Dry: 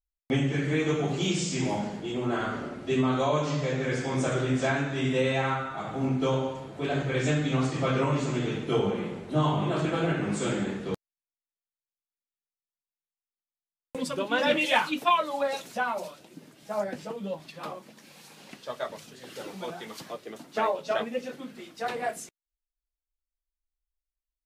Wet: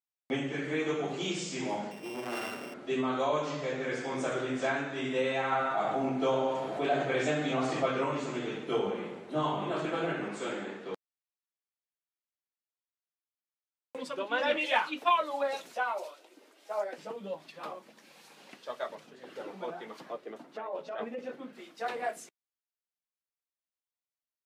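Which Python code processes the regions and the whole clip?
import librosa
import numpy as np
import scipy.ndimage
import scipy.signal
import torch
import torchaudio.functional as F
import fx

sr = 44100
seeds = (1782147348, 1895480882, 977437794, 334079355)

y = fx.chain(x, sr, fx.sample_sort(block=16),
    fx.transformer_sat(knee_hz=880.0), at=(1.91, 2.74))
y = fx.chain(y, sr, fx.peak_eq(hz=690.0, db=7.5, octaves=0.39),
    fx.env_flatten(amount_pct=50), at=(5.52, 7.86))
y = fx.chain(y, sr, fx.highpass(hz=290.0, slope=6),
    fx.high_shelf(hz=7000.0, db=-8.0), at=(10.28, 15.06))
y = fx.chain(y, sr, fx.highpass(hz=330.0, slope=24),
    fx.notch(hz=1700.0, q=22.0), at=(15.74, 16.98))
y = fx.chain(y, sr, fx.over_compress(threshold_db=-31.0, ratio=-1.0),
    fx.high_shelf(hz=2700.0, db=-12.0), at=(18.95, 21.53))
y = scipy.signal.sosfilt(scipy.signal.bessel(2, 330.0, 'highpass', norm='mag', fs=sr, output='sos'), y)
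y = fx.high_shelf(y, sr, hz=4100.0, db=-6.5)
y = F.gain(torch.from_numpy(y), -2.0).numpy()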